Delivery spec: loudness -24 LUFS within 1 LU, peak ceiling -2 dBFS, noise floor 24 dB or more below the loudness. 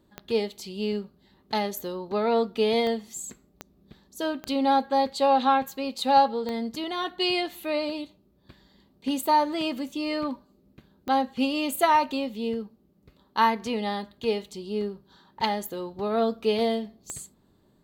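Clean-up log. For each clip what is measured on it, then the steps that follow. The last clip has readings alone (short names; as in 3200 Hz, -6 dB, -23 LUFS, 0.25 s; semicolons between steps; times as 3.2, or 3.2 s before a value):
clicks 7; loudness -26.5 LUFS; peak -8.0 dBFS; loudness target -24.0 LUFS
-> de-click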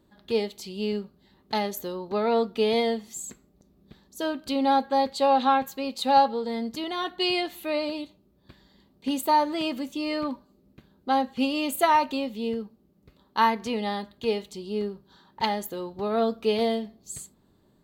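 clicks 0; loudness -26.5 LUFS; peak -8.0 dBFS; loudness target -24.0 LUFS
-> gain +2.5 dB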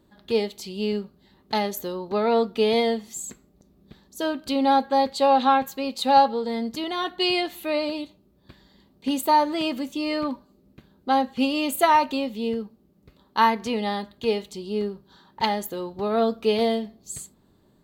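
loudness -24.0 LUFS; peak -5.5 dBFS; noise floor -61 dBFS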